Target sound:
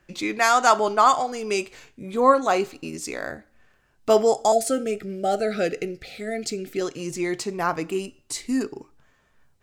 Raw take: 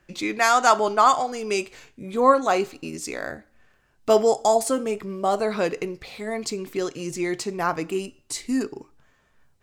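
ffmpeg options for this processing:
ffmpeg -i in.wav -filter_complex "[0:a]asettb=1/sr,asplit=3[link_01][link_02][link_03];[link_01]atrim=end=4.524[link_04];[link_02]atrim=start=4.52:end=6.81,asetpts=PTS-STARTPTS,afade=type=in:duration=0.004:curve=qsin,afade=type=out:start_time=2.286:duration=0.004:curve=qsin,asuperstop=centerf=1000:order=12:qfactor=2.2[link_05];[link_03]atrim=start=6.806[link_06];[link_04][link_05]acrossfade=duration=0.004:curve1=hsin:curve2=qsin[link_07];[link_07][link_06]acrossfade=duration=0.004:curve1=qsin:curve2=hsin" out.wav

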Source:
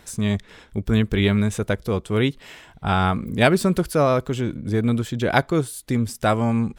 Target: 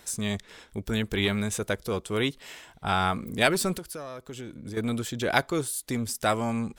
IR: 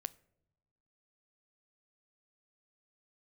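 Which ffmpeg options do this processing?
-filter_complex "[0:a]bass=frequency=250:gain=-6,treble=frequency=4000:gain=6,acrossover=split=1000[link_01][link_02];[link_01]asoftclip=type=tanh:threshold=-18dB[link_03];[link_03][link_02]amix=inputs=2:normalize=0,asettb=1/sr,asplit=3[link_04][link_05][link_06];[link_04]atrim=end=3.744[link_07];[link_05]atrim=start=3.74:end=4.77,asetpts=PTS-STARTPTS,afade=type=in:duration=0.004:curve=qsin,afade=type=out:start_time=1.026:duration=0.004:curve=qsin,acompressor=threshold=-32dB:ratio=16[link_08];[link_06]atrim=start=4.766[link_09];[link_07][link_08]acrossfade=duration=0.004:curve1=hsin:curve2=qsin[link_10];[link_10][link_09]acrossfade=duration=0.004:curve1=qsin:curve2=hsin,volume=-3dB"

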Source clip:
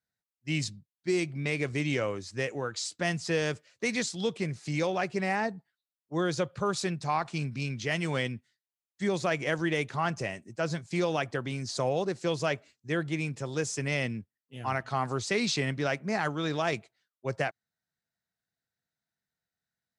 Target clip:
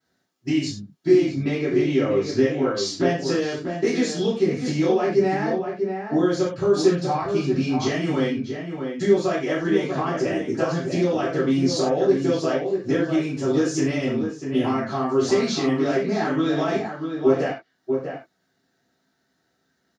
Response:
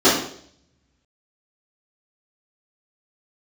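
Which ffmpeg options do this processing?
-filter_complex "[0:a]asettb=1/sr,asplit=3[link_01][link_02][link_03];[link_01]atrim=end=1.164[link_04];[link_02]atrim=start=1.16:end=3.25,asetpts=PTS-STARTPTS,afade=type=in:duration=0.004:curve=qsin,afade=type=out:start_time=2.086:duration=0.004:curve=qsin,lowpass=6100[link_05];[link_03]atrim=start=3.246[link_06];[link_04][link_05]acrossfade=duration=0.004:curve1=hsin:curve2=qsin[link_07];[link_07][link_06]acrossfade=duration=0.004:curve1=qsin:curve2=hsin,acompressor=threshold=-43dB:ratio=12,asplit=2[link_08][link_09];[link_09]adelay=641.4,volume=-6dB,highshelf=frequency=4000:gain=-14.4[link_10];[link_08][link_10]amix=inputs=2:normalize=0[link_11];[1:a]atrim=start_sample=2205,afade=type=out:start_time=0.17:duration=0.01,atrim=end_sample=7938[link_12];[link_11][link_12]afir=irnorm=-1:irlink=0,volume=-3dB"

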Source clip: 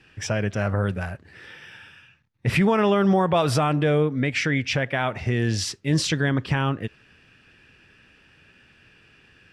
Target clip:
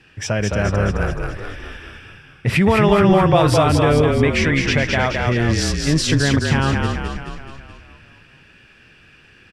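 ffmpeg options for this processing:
ffmpeg -i in.wav -filter_complex "[0:a]asplit=9[link_01][link_02][link_03][link_04][link_05][link_06][link_07][link_08][link_09];[link_02]adelay=213,afreqshift=-35,volume=-3.5dB[link_10];[link_03]adelay=426,afreqshift=-70,volume=-8.5dB[link_11];[link_04]adelay=639,afreqshift=-105,volume=-13.6dB[link_12];[link_05]adelay=852,afreqshift=-140,volume=-18.6dB[link_13];[link_06]adelay=1065,afreqshift=-175,volume=-23.6dB[link_14];[link_07]adelay=1278,afreqshift=-210,volume=-28.7dB[link_15];[link_08]adelay=1491,afreqshift=-245,volume=-33.7dB[link_16];[link_09]adelay=1704,afreqshift=-280,volume=-38.8dB[link_17];[link_01][link_10][link_11][link_12][link_13][link_14][link_15][link_16][link_17]amix=inputs=9:normalize=0,volume=4dB" out.wav

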